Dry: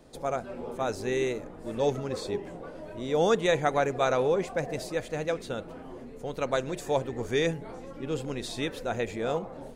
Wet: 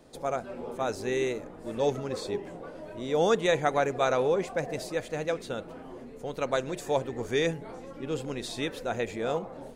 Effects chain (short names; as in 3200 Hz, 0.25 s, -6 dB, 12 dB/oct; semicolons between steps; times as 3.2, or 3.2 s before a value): low shelf 110 Hz -5 dB